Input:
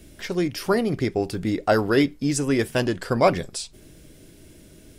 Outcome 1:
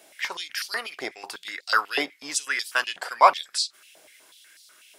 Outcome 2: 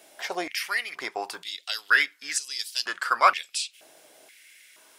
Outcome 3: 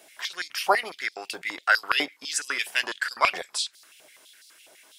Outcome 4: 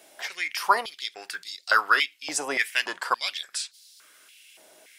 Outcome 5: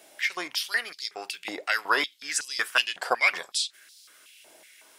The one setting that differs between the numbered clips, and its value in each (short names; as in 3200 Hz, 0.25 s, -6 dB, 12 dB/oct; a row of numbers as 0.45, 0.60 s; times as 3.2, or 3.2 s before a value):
stepped high-pass, rate: 8.1, 2.1, 12, 3.5, 5.4 Hz